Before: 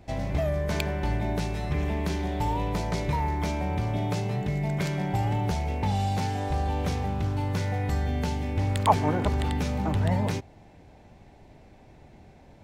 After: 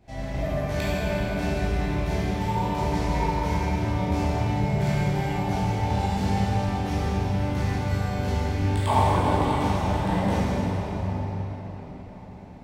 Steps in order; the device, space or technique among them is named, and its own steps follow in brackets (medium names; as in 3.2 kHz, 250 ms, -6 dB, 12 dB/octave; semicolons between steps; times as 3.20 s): cathedral (reverberation RT60 5.3 s, pre-delay 13 ms, DRR -12 dB); trim -9 dB